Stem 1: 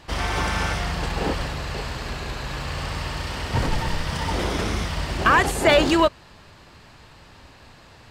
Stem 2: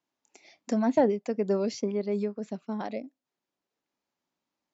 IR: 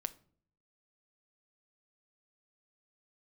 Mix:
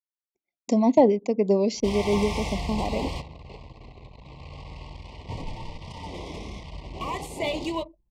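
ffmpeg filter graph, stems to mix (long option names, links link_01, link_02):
-filter_complex "[0:a]flanger=delay=8.8:depth=6.8:regen=-50:speed=0.5:shape=sinusoidal,adelay=1750,volume=-4dB,asplit=2[link_01][link_02];[link_02]volume=-5.5dB[link_03];[1:a]agate=range=-33dB:threshold=-48dB:ratio=3:detection=peak,volume=3dB,asplit=3[link_04][link_05][link_06];[link_05]volume=-8dB[link_07];[link_06]apad=whole_len=434745[link_08];[link_01][link_08]sidechaingate=range=-14dB:threshold=-54dB:ratio=16:detection=peak[link_09];[2:a]atrim=start_sample=2205[link_10];[link_03][link_07]amix=inputs=2:normalize=0[link_11];[link_11][link_10]afir=irnorm=-1:irlink=0[link_12];[link_09][link_04][link_12]amix=inputs=3:normalize=0,anlmdn=0.251,asuperstop=centerf=1500:order=12:qfactor=1.8"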